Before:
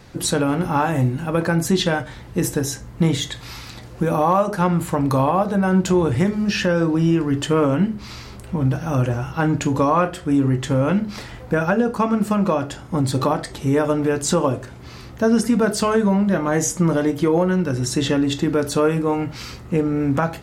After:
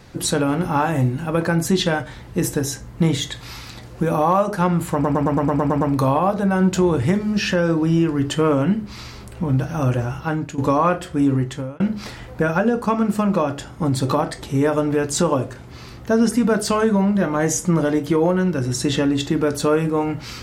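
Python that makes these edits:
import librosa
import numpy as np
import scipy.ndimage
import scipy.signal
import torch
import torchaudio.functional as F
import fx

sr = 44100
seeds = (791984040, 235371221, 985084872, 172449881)

y = fx.edit(x, sr, fx.stutter(start_s=4.93, slice_s=0.11, count=9),
    fx.fade_out_to(start_s=9.26, length_s=0.44, floor_db=-13.5),
    fx.fade_out_span(start_s=10.45, length_s=0.47), tone=tone)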